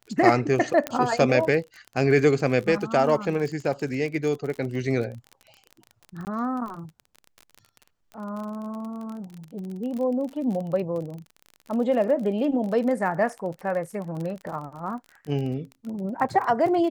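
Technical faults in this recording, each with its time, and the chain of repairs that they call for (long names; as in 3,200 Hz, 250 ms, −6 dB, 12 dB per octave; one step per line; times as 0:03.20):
surface crackle 34 per second −32 dBFS
0:00.87: click −11 dBFS
0:06.25–0:06.27: drop-out 19 ms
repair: click removal
repair the gap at 0:06.25, 19 ms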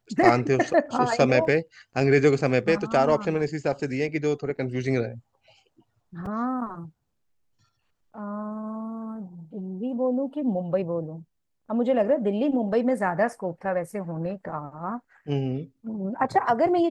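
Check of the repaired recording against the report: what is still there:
none of them is left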